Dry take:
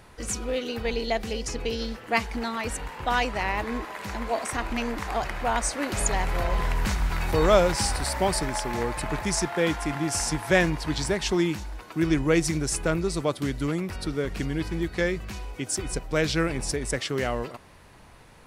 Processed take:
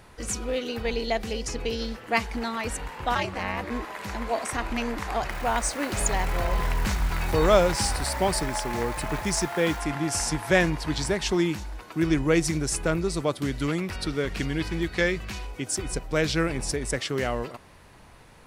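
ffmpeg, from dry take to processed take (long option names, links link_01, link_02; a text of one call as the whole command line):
ffmpeg -i in.wav -filter_complex "[0:a]asplit=3[link_01][link_02][link_03];[link_01]afade=type=out:start_time=3.14:duration=0.02[link_04];[link_02]aeval=exprs='val(0)*sin(2*PI*140*n/s)':channel_layout=same,afade=type=in:start_time=3.14:duration=0.02,afade=type=out:start_time=3.69:duration=0.02[link_05];[link_03]afade=type=in:start_time=3.69:duration=0.02[link_06];[link_04][link_05][link_06]amix=inputs=3:normalize=0,asettb=1/sr,asplit=3[link_07][link_08][link_09];[link_07]atrim=end=5.304[link_10];[link_08]atrim=start=5.3:end=9.8,asetpts=PTS-STARTPTS,afade=type=in:duration=0.004:curve=qsin,afade=type=out:start_time=4.496:duration=0.004:curve=qsin,acrusher=bits=8:dc=4:mix=0:aa=0.000001[link_11];[link_09]atrim=start=9.796[link_12];[link_10][link_11]acrossfade=duration=0.004:curve1=hsin:curve2=qsin[link_13];[link_13][link_12]acrossfade=duration=0.004:curve1=qsin:curve2=hsin,asettb=1/sr,asplit=3[link_14][link_15][link_16];[link_14]atrim=end=13.524[link_17];[link_15]atrim=start=13.52:end=15.47,asetpts=PTS-STARTPTS,afade=type=in:duration=0.004:curve=qsin,afade=type=out:start_time=1.946:duration=0.004:curve=qsin,equalizer=frequency=3000:width=0.51:gain=5[link_18];[link_16]atrim=start=15.466[link_19];[link_17][link_18]acrossfade=duration=0.004:curve1=hsin:curve2=qsin[link_20];[link_20][link_19]acrossfade=duration=0.004:curve1=qsin:curve2=hsin" out.wav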